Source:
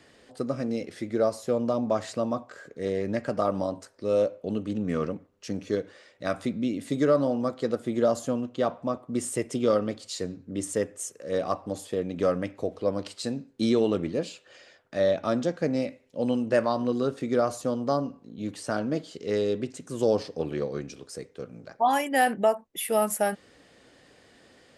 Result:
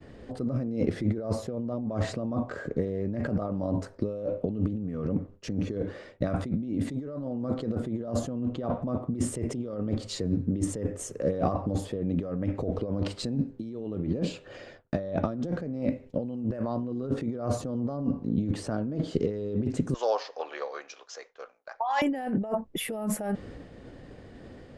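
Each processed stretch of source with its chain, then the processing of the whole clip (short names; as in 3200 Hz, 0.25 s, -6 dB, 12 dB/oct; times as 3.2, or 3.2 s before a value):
19.94–22.02 HPF 800 Hz 24 dB/oct + careless resampling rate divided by 3×, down none, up filtered
whole clip: expander -52 dBFS; tilt -4 dB/oct; negative-ratio compressor -30 dBFS, ratio -1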